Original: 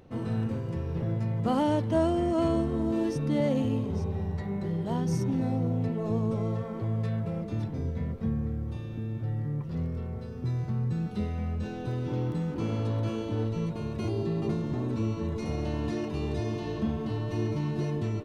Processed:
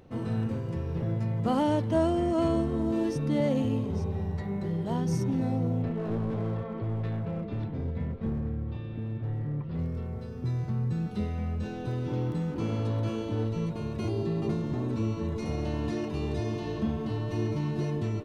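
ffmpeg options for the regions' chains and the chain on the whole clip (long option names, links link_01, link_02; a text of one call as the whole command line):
ffmpeg -i in.wav -filter_complex "[0:a]asettb=1/sr,asplit=3[link_01][link_02][link_03];[link_01]atrim=end=5.824[link_04];[link_02]atrim=start=5.82:end=9.79,asetpts=PTS-STARTPTS,afade=type=in:duration=0.004:curve=qsin,afade=type=out:start_time=3.966:duration=0.004:curve=qsin,lowpass=frequency=4000:width=0.5412,lowpass=frequency=4000:width=1.3066,aeval=exprs='clip(val(0),-1,0.0355)':channel_layout=same[link_05];[link_03]atrim=start=9.786[link_06];[link_04][link_05]acrossfade=duration=0.004:curve1=hsin:curve2=qsin[link_07];[link_07][link_06]acrossfade=duration=0.004:curve1=qsin:curve2=hsin" out.wav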